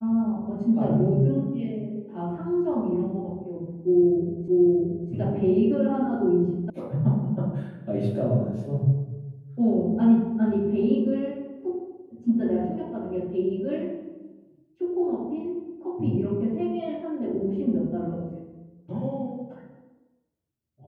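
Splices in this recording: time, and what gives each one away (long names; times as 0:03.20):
0:04.48: the same again, the last 0.63 s
0:06.70: cut off before it has died away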